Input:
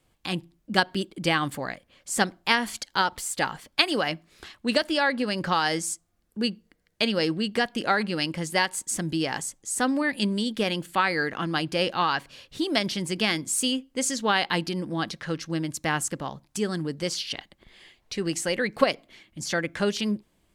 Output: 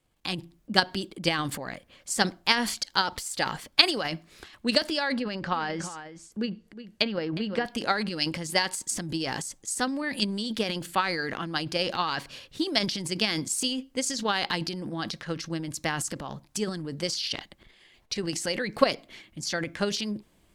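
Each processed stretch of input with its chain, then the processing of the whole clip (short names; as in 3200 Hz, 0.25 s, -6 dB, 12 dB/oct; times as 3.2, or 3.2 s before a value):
5.16–7.65 treble ducked by the level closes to 2000 Hz, closed at -20.5 dBFS + echo 0.362 s -12.5 dB
whole clip: dynamic EQ 4800 Hz, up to +7 dB, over -44 dBFS, Q 1.7; transient shaper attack +7 dB, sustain +11 dB; gain -7 dB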